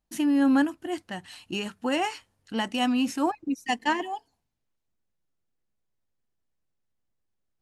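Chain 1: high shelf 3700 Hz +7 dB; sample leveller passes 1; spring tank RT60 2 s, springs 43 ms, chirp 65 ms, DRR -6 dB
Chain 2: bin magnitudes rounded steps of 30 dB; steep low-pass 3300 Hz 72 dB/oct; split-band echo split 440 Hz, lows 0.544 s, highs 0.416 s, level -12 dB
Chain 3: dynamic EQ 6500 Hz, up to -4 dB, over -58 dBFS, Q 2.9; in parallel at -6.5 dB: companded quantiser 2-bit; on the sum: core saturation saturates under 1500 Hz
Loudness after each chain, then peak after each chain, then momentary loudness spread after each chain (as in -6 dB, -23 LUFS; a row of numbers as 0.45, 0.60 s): -18.0, -28.0, -30.5 LUFS; -2.5, -12.5, -12.0 dBFS; 13, 18, 11 LU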